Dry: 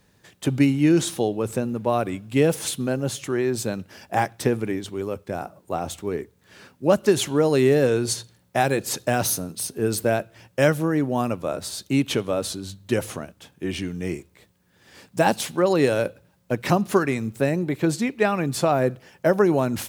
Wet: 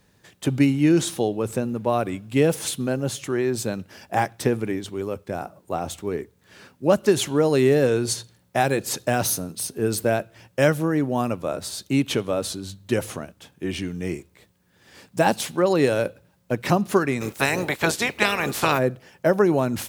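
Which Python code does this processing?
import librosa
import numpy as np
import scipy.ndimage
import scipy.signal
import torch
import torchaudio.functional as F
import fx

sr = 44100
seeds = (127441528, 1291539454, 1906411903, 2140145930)

y = fx.spec_clip(x, sr, under_db=24, at=(17.2, 18.77), fade=0.02)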